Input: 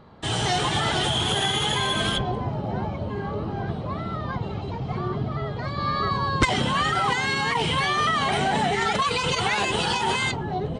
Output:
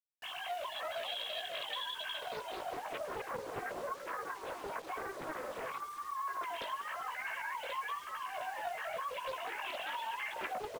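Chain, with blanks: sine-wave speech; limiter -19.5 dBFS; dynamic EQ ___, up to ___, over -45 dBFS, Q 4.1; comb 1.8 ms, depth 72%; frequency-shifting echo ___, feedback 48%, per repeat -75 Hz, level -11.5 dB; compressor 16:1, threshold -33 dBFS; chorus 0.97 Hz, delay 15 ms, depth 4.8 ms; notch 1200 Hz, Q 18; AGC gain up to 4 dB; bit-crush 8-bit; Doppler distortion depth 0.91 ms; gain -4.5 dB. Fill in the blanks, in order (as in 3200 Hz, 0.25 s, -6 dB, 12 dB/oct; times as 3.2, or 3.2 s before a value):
2300 Hz, -5 dB, 0.195 s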